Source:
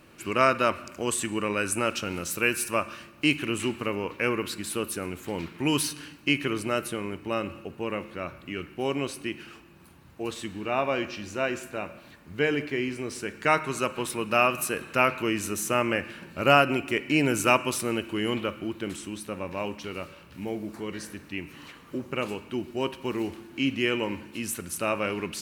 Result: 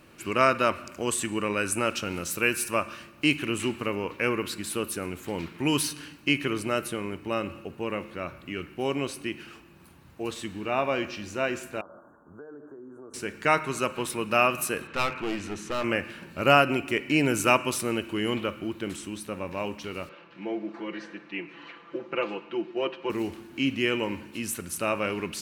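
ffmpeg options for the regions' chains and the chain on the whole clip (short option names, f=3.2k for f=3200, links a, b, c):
-filter_complex "[0:a]asettb=1/sr,asplit=3[a][b][c];[a]atrim=end=11.814[d];[b]atrim=start=11.81:end=13.14,asetpts=PTS-STARTPTS,afade=t=in:d=0.004:c=qsin,afade=t=out:st=1.326:d=0.004:c=qsin,acrossover=split=260 2800:gain=0.251 1 0.0708[e][f][g];[e][f][g]amix=inputs=3:normalize=0,acompressor=threshold=-42dB:ratio=5:attack=3.2:release=140:knee=1:detection=peak,asuperstop=centerf=3200:order=20:qfactor=0.66[h];[c]atrim=start=13.136[i];[d][h]acrossfade=d=0.004:c1=hsin:c2=qsin[j];[j][i]acrossfade=d=0.004:c1=qsin:c2=hsin,asettb=1/sr,asplit=3[k][l][m];[k]atrim=end=14.874[n];[l]atrim=start=14.87:end=15.84,asetpts=PTS-STARTPTS,afade=t=in:d=0.004:c=qsin,afade=t=out:st=0.966:d=0.004:c=qsin,lowpass=3.8k,bandreject=f=670:w=6.1,aeval=exprs='clip(val(0),-1,0.0251)':c=same[o];[m]atrim=start=15.836[p];[n][o]acrossfade=d=0.004:c1=hsin:c2=qsin[q];[q][p]acrossfade=d=0.004:c1=qsin:c2=hsin,asettb=1/sr,asplit=3[r][s][t];[r]atrim=end=20.094[u];[s]atrim=start=20.09:end=23.1,asetpts=PTS-STARTPTS,afade=t=in:d=0.004:c=qsin,afade=t=out:st=3.006:d=0.004:c=qsin,lowpass=f=6.8k:w=0.5412,lowpass=f=6.8k:w=1.3066,acrossover=split=230 3600:gain=0.0794 1 0.126[v][w][x];[v][w][x]amix=inputs=3:normalize=0,aecho=1:1:5.9:0.83,atrim=end_sample=132741[y];[t]atrim=start=23.096[z];[u][y]acrossfade=d=0.004:c1=hsin:c2=qsin[aa];[aa][z]acrossfade=d=0.004:c1=qsin:c2=hsin"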